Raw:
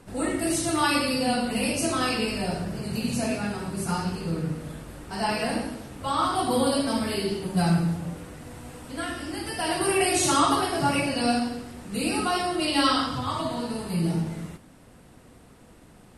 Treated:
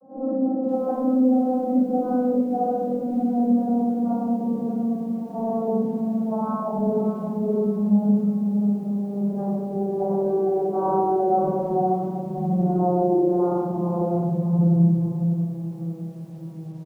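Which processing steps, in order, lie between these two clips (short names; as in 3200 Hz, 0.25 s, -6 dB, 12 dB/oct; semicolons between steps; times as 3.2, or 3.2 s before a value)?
vocoder on a gliding note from C#4, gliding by -9 st; inverse Chebyshev low-pass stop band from 2800 Hz, stop band 60 dB; comb 5.2 ms, depth 37%; compressor 2.5:1, threshold -36 dBFS, peak gain reduction 15.5 dB; echo 1.012 s -23.5 dB; shoebox room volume 220 m³, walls mixed, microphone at 6.4 m; speed mistake 25 fps video run at 24 fps; lo-fi delay 0.593 s, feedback 35%, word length 8-bit, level -11 dB; gain -3 dB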